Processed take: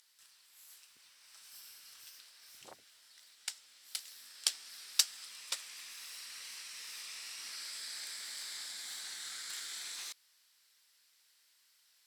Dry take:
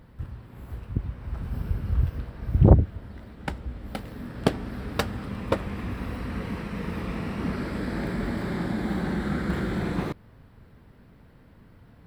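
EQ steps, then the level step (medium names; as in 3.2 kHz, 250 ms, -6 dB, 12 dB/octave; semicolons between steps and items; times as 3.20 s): band-pass filter 6.1 kHz, Q 1.8; differentiator; +15.5 dB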